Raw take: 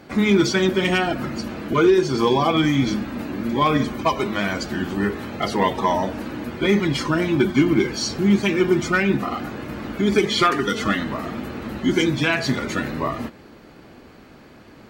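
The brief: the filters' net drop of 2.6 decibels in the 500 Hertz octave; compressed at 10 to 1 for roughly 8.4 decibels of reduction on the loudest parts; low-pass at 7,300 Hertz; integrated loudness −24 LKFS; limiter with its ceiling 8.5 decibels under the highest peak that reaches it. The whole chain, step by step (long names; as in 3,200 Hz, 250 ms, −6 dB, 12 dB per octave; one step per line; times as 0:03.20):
low-pass filter 7,300 Hz
parametric band 500 Hz −4 dB
downward compressor 10 to 1, threshold −22 dBFS
level +5.5 dB
brickwall limiter −14.5 dBFS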